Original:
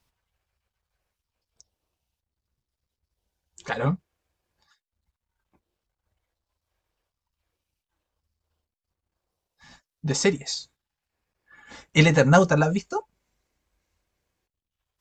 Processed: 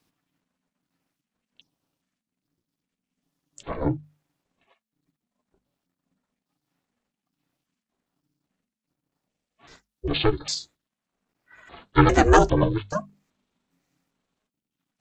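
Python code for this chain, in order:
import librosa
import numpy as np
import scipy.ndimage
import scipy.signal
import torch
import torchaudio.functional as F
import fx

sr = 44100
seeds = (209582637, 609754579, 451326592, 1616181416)

y = fx.pitch_trill(x, sr, semitones=-11.0, every_ms=403)
y = y * np.sin(2.0 * np.pi * 220.0 * np.arange(len(y)) / sr)
y = fx.hum_notches(y, sr, base_hz=50, count=5)
y = y * 10.0 ** (4.0 / 20.0)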